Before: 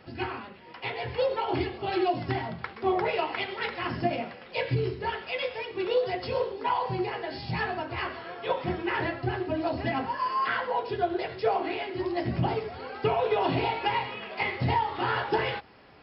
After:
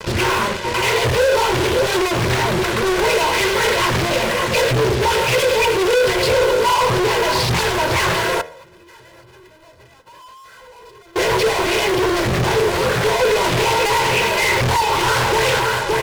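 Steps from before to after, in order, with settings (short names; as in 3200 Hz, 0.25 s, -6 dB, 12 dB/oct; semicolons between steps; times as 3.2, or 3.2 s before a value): echo 0.57 s -14 dB; Schroeder reverb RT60 1 s, combs from 29 ms, DRR 16.5 dB; fuzz box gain 51 dB, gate -50 dBFS; bell 230 Hz +11 dB 0.28 oct; 8.41–11.16 negative-ratio compressor -32 dBFS, ratio -0.5; comb 2 ms, depth 96%; de-hum 78.99 Hz, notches 27; Doppler distortion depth 0.47 ms; gain -5.5 dB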